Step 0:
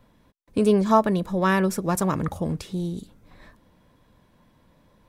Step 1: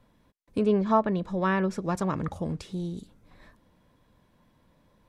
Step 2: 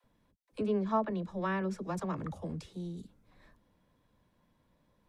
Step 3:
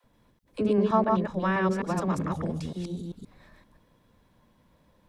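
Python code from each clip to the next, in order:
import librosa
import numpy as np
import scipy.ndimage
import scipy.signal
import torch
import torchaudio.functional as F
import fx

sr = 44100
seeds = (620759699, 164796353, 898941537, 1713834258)

y1 = fx.env_lowpass_down(x, sr, base_hz=3000.0, full_db=-16.5)
y1 = F.gain(torch.from_numpy(y1), -4.5).numpy()
y2 = fx.dispersion(y1, sr, late='lows', ms=43.0, hz=340.0)
y2 = F.gain(torch.from_numpy(y2), -7.5).numpy()
y3 = fx.reverse_delay(y2, sr, ms=130, wet_db=-2)
y3 = F.gain(torch.from_numpy(y3), 6.0).numpy()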